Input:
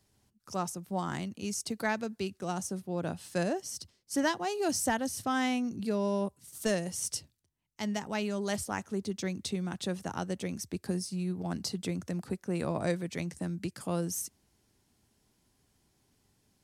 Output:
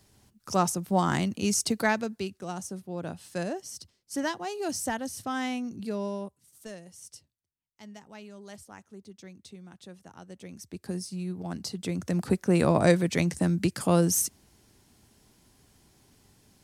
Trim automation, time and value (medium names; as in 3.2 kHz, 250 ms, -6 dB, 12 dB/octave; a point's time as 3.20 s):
1.64 s +9 dB
2.45 s -1.5 dB
6.02 s -1.5 dB
6.68 s -13 dB
10.18 s -13 dB
10.96 s -0.5 dB
11.74 s -0.5 dB
12.29 s +10 dB